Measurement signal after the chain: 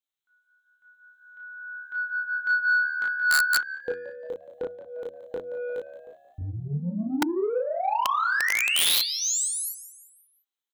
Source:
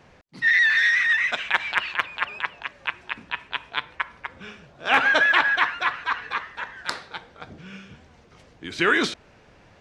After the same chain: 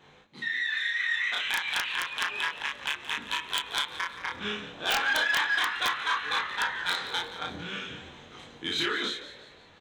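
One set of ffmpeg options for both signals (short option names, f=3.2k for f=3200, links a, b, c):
-filter_complex "[0:a]acompressor=threshold=-30dB:ratio=5,flanger=delay=20:depth=4:speed=0.33,dynaudnorm=f=160:g=17:m=8dB,superequalizer=8b=0.562:13b=2.24:14b=0.447:16b=0.631,asoftclip=type=tanh:threshold=-20dB,asplit=2[a][b];[b]adelay=34,volume=-2dB[c];[a][c]amix=inputs=2:normalize=0,bandreject=f=89.68:t=h:w=4,bandreject=f=179.36:t=h:w=4,bandreject=f=269.04:t=h:w=4,bandreject=f=358.72:t=h:w=4,asplit=5[d][e][f][g][h];[e]adelay=175,afreqshift=72,volume=-14dB[i];[f]adelay=350,afreqshift=144,volume=-21.1dB[j];[g]adelay=525,afreqshift=216,volume=-28.3dB[k];[h]adelay=700,afreqshift=288,volume=-35.4dB[l];[d][i][j][k][l]amix=inputs=5:normalize=0,aeval=exprs='(mod(6.68*val(0)+1,2)-1)/6.68':c=same,lowshelf=f=150:g=-9.5"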